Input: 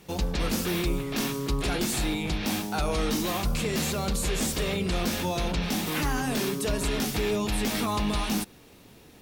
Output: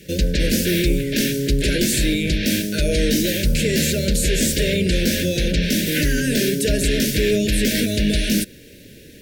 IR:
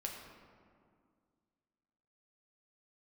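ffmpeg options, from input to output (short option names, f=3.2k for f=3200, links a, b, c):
-af "asuperstop=centerf=970:order=20:qfactor=1.1,acontrast=54,volume=3dB"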